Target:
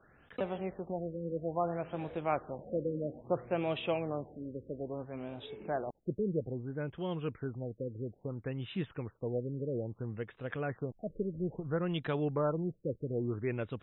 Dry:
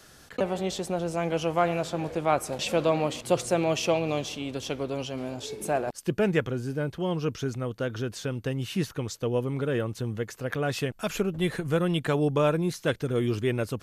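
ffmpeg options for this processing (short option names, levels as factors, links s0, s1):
-af "afftfilt=real='re*lt(b*sr/1024,560*pow(4000/560,0.5+0.5*sin(2*PI*0.6*pts/sr)))':imag='im*lt(b*sr/1024,560*pow(4000/560,0.5+0.5*sin(2*PI*0.6*pts/sr)))':win_size=1024:overlap=0.75,volume=0.398"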